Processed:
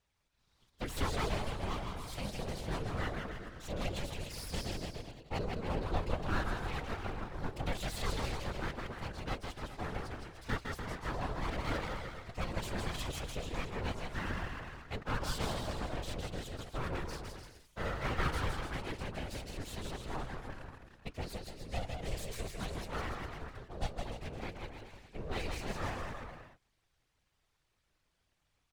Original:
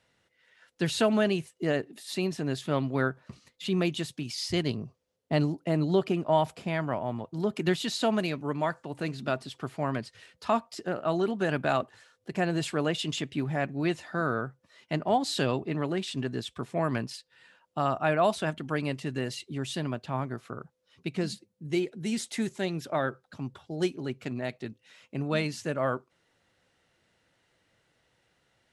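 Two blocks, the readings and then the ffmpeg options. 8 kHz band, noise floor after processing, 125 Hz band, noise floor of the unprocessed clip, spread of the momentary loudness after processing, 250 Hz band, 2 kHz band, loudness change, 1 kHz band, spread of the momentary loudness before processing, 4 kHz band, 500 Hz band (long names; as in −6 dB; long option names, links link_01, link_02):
−6.0 dB, −78 dBFS, −6.5 dB, −74 dBFS, 9 LU, −13.0 dB, −6.5 dB, −9.5 dB, −8.0 dB, 11 LU, −7.5 dB, −12.5 dB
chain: -af "aecho=1:1:160|296|411.6|509.9|593.4:0.631|0.398|0.251|0.158|0.1,aeval=exprs='abs(val(0))':channel_layout=same,afftfilt=real='hypot(re,im)*cos(2*PI*random(0))':imag='hypot(re,im)*sin(2*PI*random(1))':win_size=512:overlap=0.75,volume=-2.5dB"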